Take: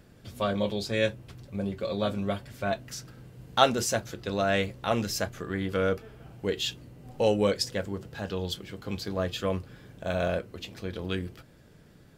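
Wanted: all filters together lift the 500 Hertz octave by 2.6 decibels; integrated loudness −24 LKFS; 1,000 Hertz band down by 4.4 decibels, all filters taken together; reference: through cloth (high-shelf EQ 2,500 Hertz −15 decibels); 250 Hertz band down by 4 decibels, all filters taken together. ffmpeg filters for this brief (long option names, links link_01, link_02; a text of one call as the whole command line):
ffmpeg -i in.wav -af "equalizer=frequency=250:width_type=o:gain=-7,equalizer=frequency=500:width_type=o:gain=7.5,equalizer=frequency=1000:width_type=o:gain=-8,highshelf=frequency=2500:gain=-15,volume=6dB" out.wav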